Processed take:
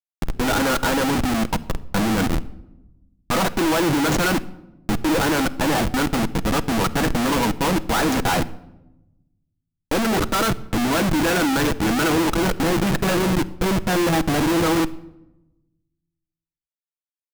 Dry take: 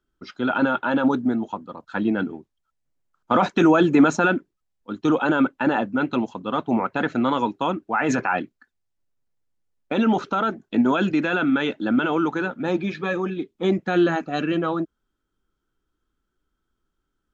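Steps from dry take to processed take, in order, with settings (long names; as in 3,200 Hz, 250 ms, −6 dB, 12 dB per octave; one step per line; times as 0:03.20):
hold until the input has moved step −32 dBFS
comparator with hysteresis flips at −33.5 dBFS
rectangular room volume 3,800 cubic metres, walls furnished, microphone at 0.65 metres
level +4 dB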